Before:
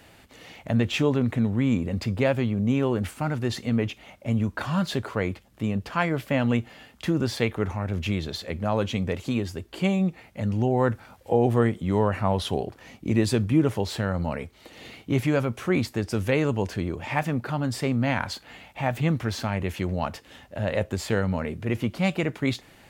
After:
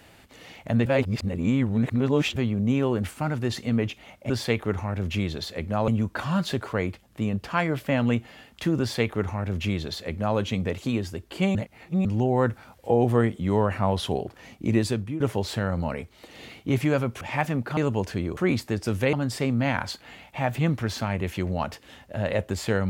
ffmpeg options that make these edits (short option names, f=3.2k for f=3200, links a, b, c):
-filter_complex "[0:a]asplit=12[a][b][c][d][e][f][g][h][i][j][k][l];[a]atrim=end=0.862[m];[b]atrim=start=0.858:end=2.362,asetpts=PTS-STARTPTS,areverse[n];[c]atrim=start=2.358:end=4.302[o];[d]atrim=start=7.218:end=8.802[p];[e]atrim=start=4.298:end=9.972[q];[f]atrim=start=9.968:end=10.472,asetpts=PTS-STARTPTS,areverse[r];[g]atrim=start=10.468:end=13.62,asetpts=PTS-STARTPTS,afade=t=out:st=2.712:d=0.44:silence=0.177828[s];[h]atrim=start=13.62:end=15.632,asetpts=PTS-STARTPTS,afade=t=in:d=0.004:c=hsin:silence=0.177828[t];[i]atrim=start=16.988:end=17.552[u];[j]atrim=start=16.388:end=16.992[v];[k]atrim=start=15.628:end=16.392[w];[l]atrim=start=17.548[x];[m][n]acrossfade=d=0.004:c1=hsin:c2=hsin[y];[y][o]acrossfade=d=0.004:c1=hsin:c2=hsin[z];[z][p]acrossfade=d=0.004:c1=hsin:c2=hsin[aa];[aa][q]acrossfade=d=0.004:c1=hsin:c2=hsin[ab];[ab][r]acrossfade=d=0.004:c1=hsin:c2=hsin[ac];[s][t]concat=n=2:v=0:a=1[ad];[ac][ad]acrossfade=d=0.004:c1=hsin:c2=hsin[ae];[ae][u]acrossfade=d=0.004:c1=hsin:c2=hsin[af];[af][v]acrossfade=d=0.004:c1=hsin:c2=hsin[ag];[ag][w]acrossfade=d=0.004:c1=hsin:c2=hsin[ah];[ah][x]acrossfade=d=0.004:c1=hsin:c2=hsin"